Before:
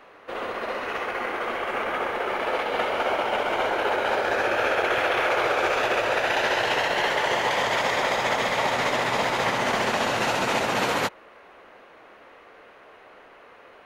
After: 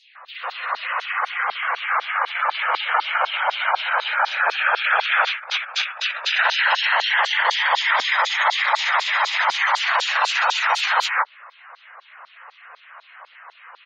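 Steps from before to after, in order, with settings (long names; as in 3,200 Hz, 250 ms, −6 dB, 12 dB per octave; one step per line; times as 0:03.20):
in parallel at −8 dB: soft clipping −25.5 dBFS, distortion −10 dB
on the sum: three-band delay without the direct sound highs, lows, mids 90/150 ms, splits 170/2,400 Hz
auto-filter high-pass saw down 4 Hz 880–4,400 Hz
gate on every frequency bin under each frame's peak −20 dB strong
0:05.27–0:06.33: compressor whose output falls as the input rises −29 dBFS, ratio −0.5
level +3.5 dB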